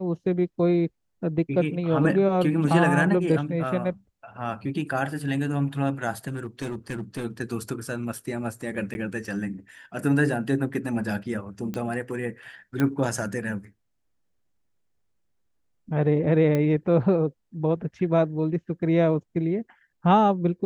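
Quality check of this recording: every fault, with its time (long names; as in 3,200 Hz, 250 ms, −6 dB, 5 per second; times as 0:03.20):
0:06.27–0:07.25: clipping −26 dBFS
0:08.94–0:08.95: drop-out 11 ms
0:11.74: click −18 dBFS
0:12.80: click −13 dBFS
0:16.55: click −14 dBFS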